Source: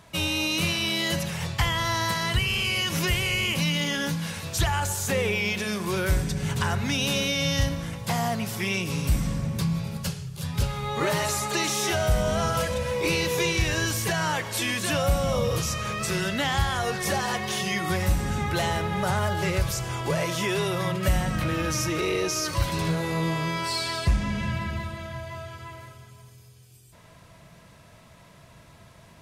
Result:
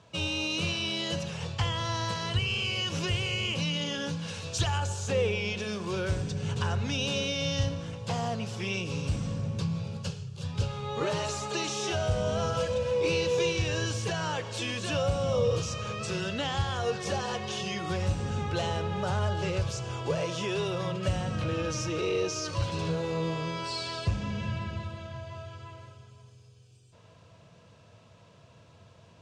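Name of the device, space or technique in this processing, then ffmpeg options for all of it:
car door speaker: -filter_complex "[0:a]highpass=81,equalizer=f=100:t=q:w=4:g=10,equalizer=f=480:t=q:w=4:g=8,equalizer=f=2000:t=q:w=4:g=-8,equalizer=f=2800:t=q:w=4:g=4,lowpass=f=7300:w=0.5412,lowpass=f=7300:w=1.3066,asettb=1/sr,asplit=3[s0][s1][s2];[s0]atrim=end=4.284[s3];[s1]atrim=start=4.28:end=4.78,asetpts=PTS-STARTPTS,afade=t=in:d=0.004:c=qsin,afade=t=out:st=0.496:d=0.004:c=qsin,equalizer=f=12000:t=o:w=2.9:g=5[s4];[s2]atrim=start=4.776[s5];[s3][s4]acrossfade=d=0.004:c1=hsin:c2=qsin[s6];[s6][s5]acrossfade=d=0.004:c1=qsin:c2=hsin,volume=0.501"

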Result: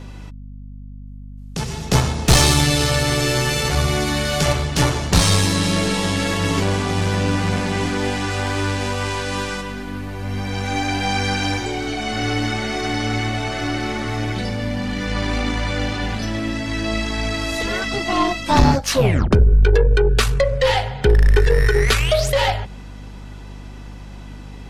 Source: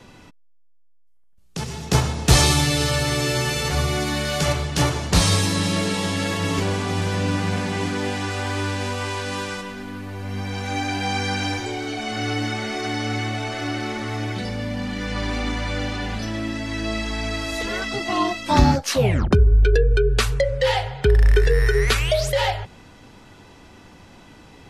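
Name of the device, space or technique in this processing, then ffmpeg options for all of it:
valve amplifier with mains hum: -af "aeval=exprs='(tanh(3.55*val(0)+0.45)-tanh(0.45))/3.55':c=same,aeval=exprs='val(0)+0.0112*(sin(2*PI*50*n/s)+sin(2*PI*2*50*n/s)/2+sin(2*PI*3*50*n/s)/3+sin(2*PI*4*50*n/s)/4+sin(2*PI*5*50*n/s)/5)':c=same,volume=1.78"

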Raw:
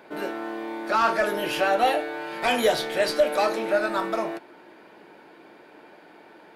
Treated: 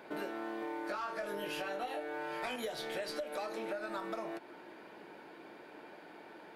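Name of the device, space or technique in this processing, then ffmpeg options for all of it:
serial compression, leveller first: -filter_complex "[0:a]asettb=1/sr,asplit=3[s0][s1][s2];[s0]atrim=end=0.604[s3];[s1]atrim=start=0.6:end=2.56,asetpts=PTS-STARTPTS,afade=t=in:d=0.004:c=qsin,afade=t=out:st=1.956:d=0.004:c=qsin,asplit=2[s4][s5];[s5]adelay=20,volume=0.794[s6];[s4][s6]amix=inputs=2:normalize=0,atrim=end_sample=86436[s7];[s2]atrim=start=2.556[s8];[s3][s7]acrossfade=d=0.004:c1=hsin:c2=qsin[s9];[s9][s8]acrossfade=d=0.004:c1=qsin:c2=hsin,acompressor=threshold=0.0708:ratio=2.5,acompressor=threshold=0.02:ratio=6,volume=0.708"

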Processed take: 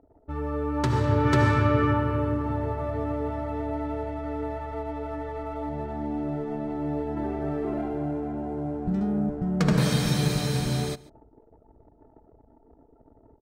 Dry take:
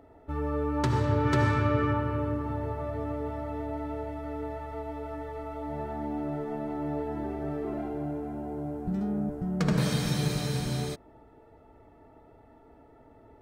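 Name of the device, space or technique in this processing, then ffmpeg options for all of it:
voice memo with heavy noise removal: -filter_complex "[0:a]asettb=1/sr,asplit=3[s0][s1][s2];[s0]atrim=end=5.694[s3];[s1]atrim=start=5.69:end=7.17,asetpts=PTS-STARTPTS,afade=t=in:d=0.004:c=qsin,afade=t=out:st=1.476:d=0.004:c=qsin,equalizer=f=1200:w=0.56:g=-4.5[s4];[s2]atrim=start=7.166[s5];[s3][s4]acrossfade=d=0.004:c1=hsin:c2=qsin[s6];[s6][s5]acrossfade=d=0.004:c1=qsin:c2=hsin,anlmdn=0.00398,dynaudnorm=f=630:g=3:m=1.58,aecho=1:1:140:0.0841"

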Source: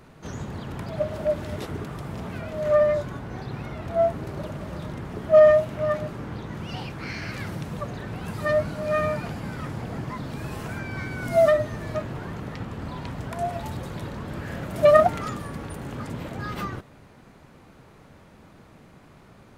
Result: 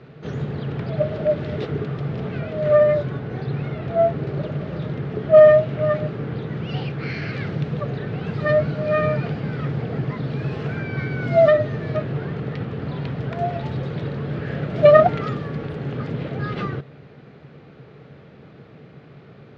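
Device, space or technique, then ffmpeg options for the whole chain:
guitar cabinet: -af "highpass=91,equalizer=f=140:t=q:w=4:g=10,equalizer=f=440:t=q:w=4:g=8,equalizer=f=970:t=q:w=4:g=-8,lowpass=f=4200:w=0.5412,lowpass=f=4200:w=1.3066,volume=1.5"

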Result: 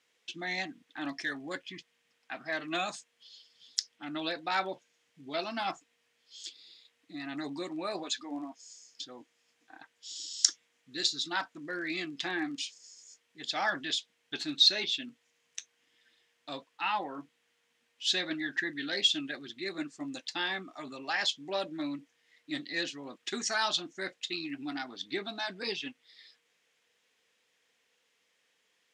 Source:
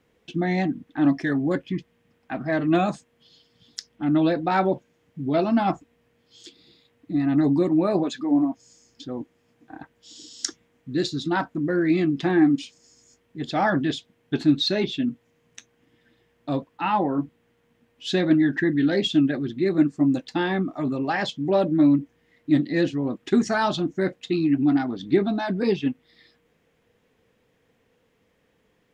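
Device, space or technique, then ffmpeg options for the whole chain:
piezo pickup straight into a mixer: -af "lowpass=6300,aderivative,volume=2.66"

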